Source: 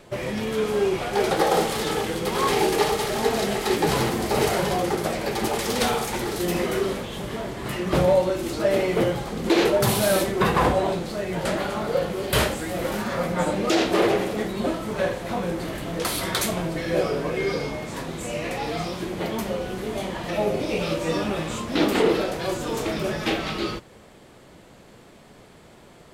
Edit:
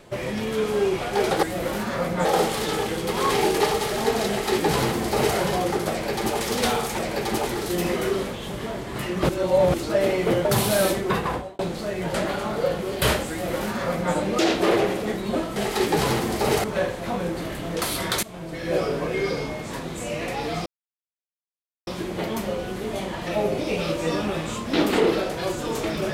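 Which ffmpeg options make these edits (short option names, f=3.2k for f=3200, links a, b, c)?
-filter_complex "[0:a]asplit=13[a][b][c][d][e][f][g][h][i][j][k][l][m];[a]atrim=end=1.432[n];[b]atrim=start=12.618:end=13.442[o];[c]atrim=start=1.428:end=6.172[p];[d]atrim=start=5.088:end=5.572[q];[e]atrim=start=6.168:end=7.992[r];[f]atrim=start=7.988:end=8.442,asetpts=PTS-STARTPTS,areverse[s];[g]atrim=start=8.438:end=9.152[t];[h]atrim=start=9.758:end=10.9,asetpts=PTS-STARTPTS,afade=t=out:st=0.512:d=0.63[u];[i]atrim=start=10.9:end=14.872,asetpts=PTS-STARTPTS,afade=t=in:d=0.004:c=hsin[v];[j]atrim=start=3.458:end=4.542[w];[k]atrim=start=14.868:end=16.46,asetpts=PTS-STARTPTS,afade=t=out:st=1.588:d=0.004:c=hsin:silence=0.1[x];[l]atrim=start=16.46:end=18.89,asetpts=PTS-STARTPTS,afade=t=in:d=0.59:silence=0.1,afade=t=out:st=2.426:d=0.004:c=hsin,apad=pad_dur=1.21[y];[m]atrim=start=18.89,asetpts=PTS-STARTPTS,afade=t=in:d=0.004:c=hsin[z];[n][o]acrossfade=d=0.004:c1=hsin:c2=hsin[aa];[aa][p]acrossfade=d=0.004:c1=hsin:c2=hsin[ab];[ab][q]acrossfade=d=0.004:c1=hsin:c2=hsin[ac];[ac][r]acrossfade=d=0.004:c1=hsin:c2=hsin[ad];[ad][s]acrossfade=d=0.004:c1=hsin:c2=hsin[ae];[ae][t]acrossfade=d=0.004:c1=hsin:c2=hsin[af];[u][v]concat=n=2:v=0:a=1[ag];[af][ag]acrossfade=d=0.004:c1=hsin:c2=hsin[ah];[ah][w]acrossfade=d=0.004:c1=hsin:c2=hsin[ai];[x][y][z]concat=n=3:v=0:a=1[aj];[ai][aj]acrossfade=d=0.004:c1=hsin:c2=hsin"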